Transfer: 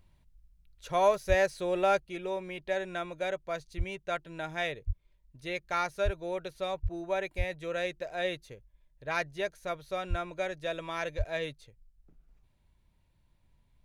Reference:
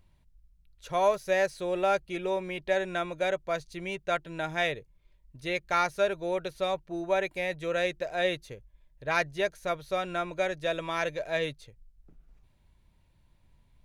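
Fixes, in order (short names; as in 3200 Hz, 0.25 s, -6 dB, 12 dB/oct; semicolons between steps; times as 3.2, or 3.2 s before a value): de-plosive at 1.28/3.77/4.86/6.04/6.82/7.37/10.09/11.17; gain 0 dB, from 2 s +4.5 dB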